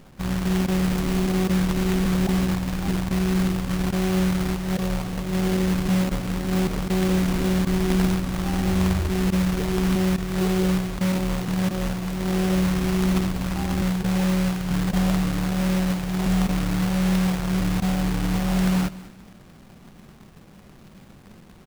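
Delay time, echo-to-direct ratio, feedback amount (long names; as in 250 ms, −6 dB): 204 ms, −17.5 dB, 29%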